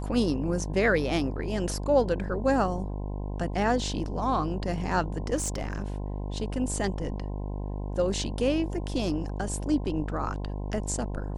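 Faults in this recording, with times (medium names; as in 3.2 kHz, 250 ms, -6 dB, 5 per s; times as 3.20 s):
buzz 50 Hz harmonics 21 -33 dBFS
5.35–5.84 s: clipped -25 dBFS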